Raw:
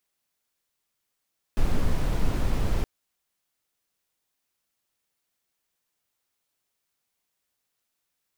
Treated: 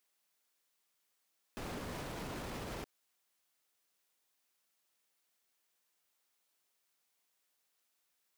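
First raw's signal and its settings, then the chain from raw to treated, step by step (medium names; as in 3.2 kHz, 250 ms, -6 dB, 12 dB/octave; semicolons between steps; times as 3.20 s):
noise brown, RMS -21.5 dBFS 1.27 s
high-pass 330 Hz 6 dB/octave; peak limiter -34.5 dBFS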